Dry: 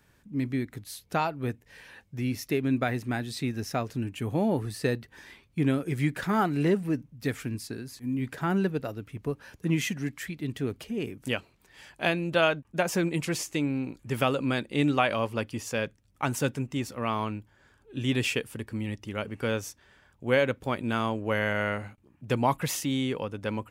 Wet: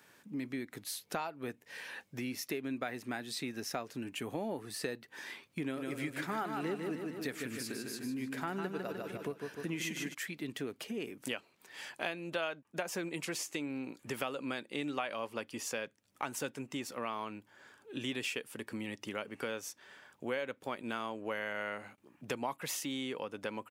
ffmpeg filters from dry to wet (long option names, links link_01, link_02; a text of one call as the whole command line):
ffmpeg -i in.wav -filter_complex "[0:a]asplit=3[link_01][link_02][link_03];[link_01]afade=type=out:start_time=5.76:duration=0.02[link_04];[link_02]aecho=1:1:151|302|453|604|755|906:0.531|0.255|0.122|0.0587|0.0282|0.0135,afade=type=in:start_time=5.76:duration=0.02,afade=type=out:start_time=10.13:duration=0.02[link_05];[link_03]afade=type=in:start_time=10.13:duration=0.02[link_06];[link_04][link_05][link_06]amix=inputs=3:normalize=0,highpass=200,lowshelf=frequency=320:gain=-6.5,acompressor=threshold=-43dB:ratio=3,volume=4.5dB" out.wav